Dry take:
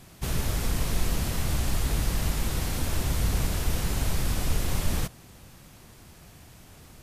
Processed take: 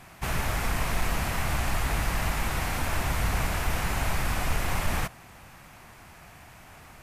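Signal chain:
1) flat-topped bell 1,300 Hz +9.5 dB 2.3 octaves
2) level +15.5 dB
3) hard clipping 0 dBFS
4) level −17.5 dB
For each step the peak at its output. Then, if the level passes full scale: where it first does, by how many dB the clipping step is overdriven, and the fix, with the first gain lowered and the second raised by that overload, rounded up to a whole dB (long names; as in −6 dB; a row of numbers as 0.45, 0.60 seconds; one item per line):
−11.5, +4.0, 0.0, −17.5 dBFS
step 2, 4.0 dB
step 2 +11.5 dB, step 4 −13.5 dB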